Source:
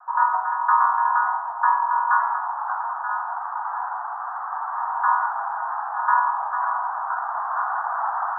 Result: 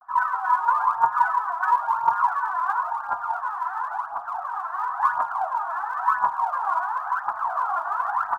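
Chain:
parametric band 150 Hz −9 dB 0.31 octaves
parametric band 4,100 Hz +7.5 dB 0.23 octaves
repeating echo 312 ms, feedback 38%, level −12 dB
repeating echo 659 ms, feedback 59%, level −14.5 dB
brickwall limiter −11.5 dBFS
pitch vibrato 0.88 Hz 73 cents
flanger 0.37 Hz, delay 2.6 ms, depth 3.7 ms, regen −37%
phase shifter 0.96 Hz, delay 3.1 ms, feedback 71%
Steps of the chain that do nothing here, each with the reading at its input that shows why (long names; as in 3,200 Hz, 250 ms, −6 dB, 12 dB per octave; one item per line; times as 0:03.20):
parametric band 150 Hz: nothing at its input below 600 Hz
parametric band 4,100 Hz: nothing at its input above 1,800 Hz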